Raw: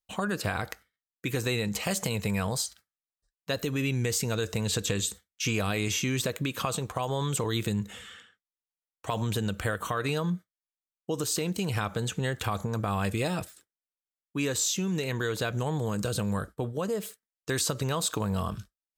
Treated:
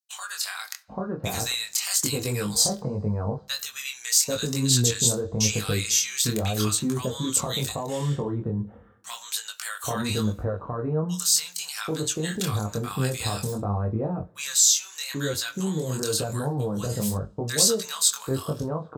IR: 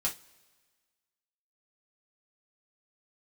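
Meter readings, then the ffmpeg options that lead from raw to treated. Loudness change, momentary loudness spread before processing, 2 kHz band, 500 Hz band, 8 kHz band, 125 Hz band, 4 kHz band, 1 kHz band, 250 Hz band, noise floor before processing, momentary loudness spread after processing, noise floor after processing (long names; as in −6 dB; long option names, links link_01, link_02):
+5.0 dB, 8 LU, −0.5 dB, +2.5 dB, +10.5 dB, +3.0 dB, +7.5 dB, 0.0 dB, +2.5 dB, below −85 dBFS, 11 LU, −49 dBFS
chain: -filter_complex "[0:a]agate=range=-10dB:threshold=-47dB:ratio=16:detection=peak,highshelf=frequency=3600:width_type=q:width=1.5:gain=9.5,flanger=delay=18.5:depth=7.5:speed=0.84,acrossover=split=1100[link_01][link_02];[link_01]adelay=790[link_03];[link_03][link_02]amix=inputs=2:normalize=0,asplit=2[link_04][link_05];[1:a]atrim=start_sample=2205,lowpass=3700[link_06];[link_05][link_06]afir=irnorm=-1:irlink=0,volume=-9.5dB[link_07];[link_04][link_07]amix=inputs=2:normalize=0,volume=3dB"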